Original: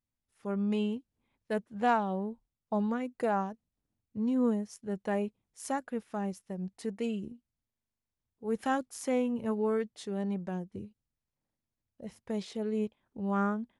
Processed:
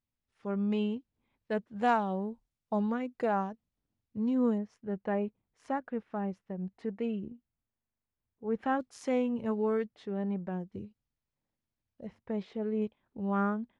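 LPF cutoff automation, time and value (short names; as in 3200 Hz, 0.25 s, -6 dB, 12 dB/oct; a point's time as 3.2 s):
4500 Hz
from 1.76 s 9000 Hz
from 2.79 s 5000 Hz
from 4.58 s 2200 Hz
from 8.8 s 5100 Hz
from 9.86 s 2400 Hz
from 10.6 s 4900 Hz
from 12.07 s 2200 Hz
from 12.82 s 3700 Hz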